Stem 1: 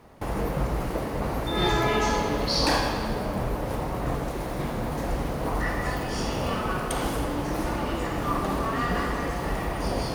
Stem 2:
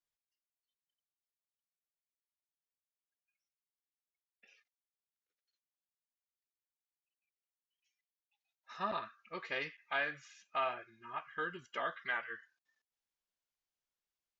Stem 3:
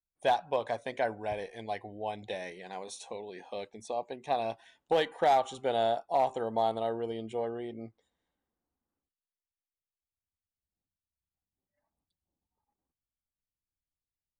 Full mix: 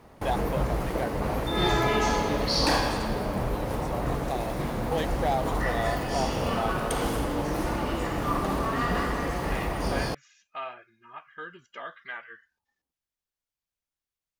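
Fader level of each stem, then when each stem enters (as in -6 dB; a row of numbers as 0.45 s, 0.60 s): -0.5 dB, -1.5 dB, -3.0 dB; 0.00 s, 0.00 s, 0.00 s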